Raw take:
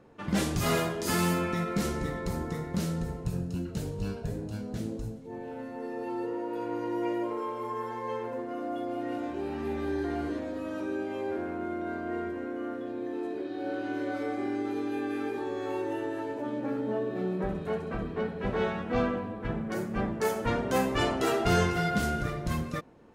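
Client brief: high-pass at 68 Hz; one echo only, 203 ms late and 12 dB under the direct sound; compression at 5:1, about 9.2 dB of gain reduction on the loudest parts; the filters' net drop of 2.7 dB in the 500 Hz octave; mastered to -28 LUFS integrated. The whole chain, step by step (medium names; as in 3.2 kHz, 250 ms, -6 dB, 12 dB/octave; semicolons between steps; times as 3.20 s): high-pass 68 Hz; peaking EQ 500 Hz -3.5 dB; compression 5:1, threshold -32 dBFS; delay 203 ms -12 dB; trim +8.5 dB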